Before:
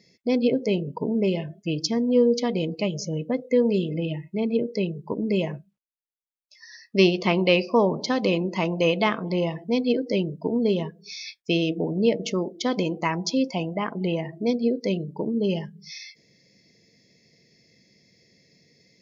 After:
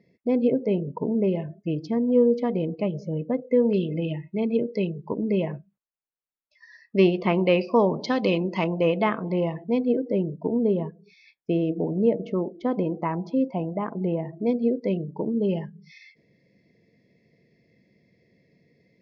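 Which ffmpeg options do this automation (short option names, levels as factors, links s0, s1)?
-af "asetnsamples=n=441:p=0,asendcmd='3.73 lowpass f 3000;5.17 lowpass f 2000;7.61 lowpass f 3900;8.64 lowpass f 1900;9.85 lowpass f 1100;14.4 lowpass f 1800',lowpass=1500"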